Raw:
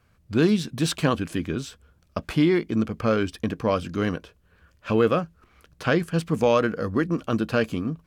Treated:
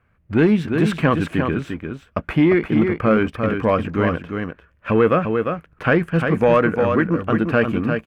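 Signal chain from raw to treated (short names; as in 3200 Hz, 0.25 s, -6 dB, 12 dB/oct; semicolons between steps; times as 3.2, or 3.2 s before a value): echo 0.349 s -6.5 dB; sample leveller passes 1; resonant high shelf 3200 Hz -13.5 dB, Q 1.5; gain +1.5 dB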